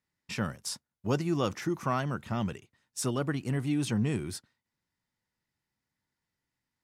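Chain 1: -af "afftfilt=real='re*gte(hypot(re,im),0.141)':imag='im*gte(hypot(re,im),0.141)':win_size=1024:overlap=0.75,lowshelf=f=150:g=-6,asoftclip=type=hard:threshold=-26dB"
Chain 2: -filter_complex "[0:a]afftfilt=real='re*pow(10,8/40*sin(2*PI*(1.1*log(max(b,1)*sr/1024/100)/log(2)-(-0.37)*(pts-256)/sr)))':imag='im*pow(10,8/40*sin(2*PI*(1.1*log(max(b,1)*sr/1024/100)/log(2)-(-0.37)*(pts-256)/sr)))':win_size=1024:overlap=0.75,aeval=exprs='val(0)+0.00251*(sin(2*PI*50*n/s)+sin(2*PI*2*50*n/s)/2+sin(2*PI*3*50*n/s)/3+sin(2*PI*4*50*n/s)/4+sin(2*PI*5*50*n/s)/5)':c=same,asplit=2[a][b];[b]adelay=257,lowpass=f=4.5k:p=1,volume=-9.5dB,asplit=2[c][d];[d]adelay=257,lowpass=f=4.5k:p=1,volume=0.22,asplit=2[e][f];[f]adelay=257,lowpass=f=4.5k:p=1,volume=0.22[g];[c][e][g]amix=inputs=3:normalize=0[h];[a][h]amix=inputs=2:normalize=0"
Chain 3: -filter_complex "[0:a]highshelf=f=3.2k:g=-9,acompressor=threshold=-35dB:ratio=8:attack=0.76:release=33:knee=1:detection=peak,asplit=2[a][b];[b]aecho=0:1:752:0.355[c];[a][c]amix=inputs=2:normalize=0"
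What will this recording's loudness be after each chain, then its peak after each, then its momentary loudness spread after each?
-36.0, -31.5, -41.0 LUFS; -26.0, -14.0, -28.0 dBFS; 9, 10, 9 LU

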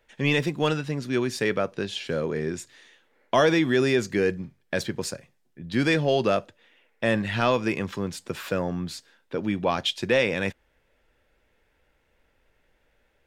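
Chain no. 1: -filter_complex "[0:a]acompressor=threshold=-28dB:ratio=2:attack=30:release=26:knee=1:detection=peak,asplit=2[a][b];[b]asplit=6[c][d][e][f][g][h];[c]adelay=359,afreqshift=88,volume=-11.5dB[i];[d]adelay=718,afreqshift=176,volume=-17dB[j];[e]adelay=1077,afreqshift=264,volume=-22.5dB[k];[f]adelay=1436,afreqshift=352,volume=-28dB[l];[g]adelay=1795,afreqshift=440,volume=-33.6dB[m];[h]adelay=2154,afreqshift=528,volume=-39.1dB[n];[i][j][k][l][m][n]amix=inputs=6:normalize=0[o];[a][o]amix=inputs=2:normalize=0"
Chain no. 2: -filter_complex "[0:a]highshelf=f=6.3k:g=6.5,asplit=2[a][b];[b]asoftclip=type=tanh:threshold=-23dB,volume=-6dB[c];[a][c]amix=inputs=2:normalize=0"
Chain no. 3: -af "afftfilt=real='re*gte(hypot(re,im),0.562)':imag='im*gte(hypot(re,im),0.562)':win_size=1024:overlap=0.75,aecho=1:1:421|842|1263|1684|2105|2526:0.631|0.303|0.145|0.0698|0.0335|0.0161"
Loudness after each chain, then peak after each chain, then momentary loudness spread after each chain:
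-27.5, -23.5, -29.5 LUFS; -8.0, -6.5, -13.0 dBFS; 14, 10, 19 LU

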